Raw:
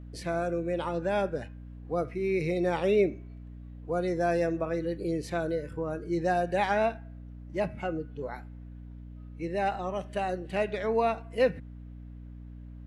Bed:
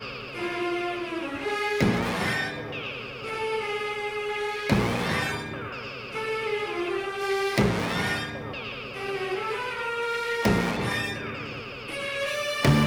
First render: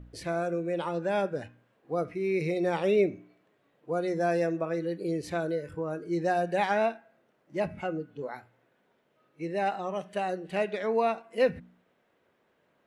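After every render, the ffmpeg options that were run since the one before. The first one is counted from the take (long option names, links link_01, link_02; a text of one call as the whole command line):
ffmpeg -i in.wav -af "bandreject=frequency=60:width_type=h:width=4,bandreject=frequency=120:width_type=h:width=4,bandreject=frequency=180:width_type=h:width=4,bandreject=frequency=240:width_type=h:width=4,bandreject=frequency=300:width_type=h:width=4" out.wav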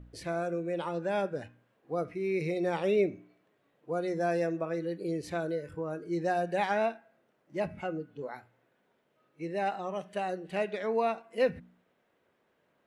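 ffmpeg -i in.wav -af "volume=-2.5dB" out.wav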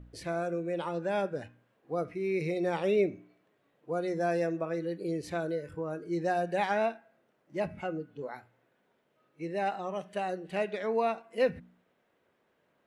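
ffmpeg -i in.wav -af anull out.wav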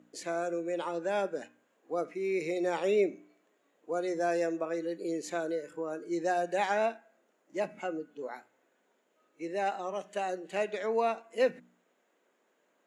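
ffmpeg -i in.wav -af "highpass=frequency=230:width=0.5412,highpass=frequency=230:width=1.3066,equalizer=frequency=6900:width_type=o:width=0.27:gain=14.5" out.wav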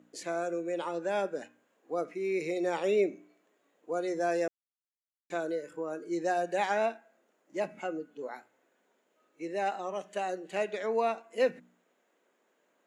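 ffmpeg -i in.wav -filter_complex "[0:a]asplit=3[link_01][link_02][link_03];[link_01]atrim=end=4.48,asetpts=PTS-STARTPTS,afade=type=out:start_time=4.476:duration=0.004:curve=hsin[link_04];[link_02]atrim=start=4.48:end=5.3,asetpts=PTS-STARTPTS,volume=0[link_05];[link_03]atrim=start=5.3,asetpts=PTS-STARTPTS,afade=type=in:duration=0.004:curve=hsin[link_06];[link_04][link_05][link_06]concat=n=3:v=0:a=1" out.wav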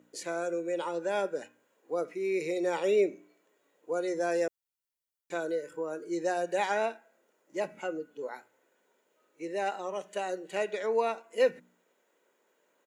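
ffmpeg -i in.wav -af "highshelf=frequency=8700:gain=6.5,aecho=1:1:2.1:0.31" out.wav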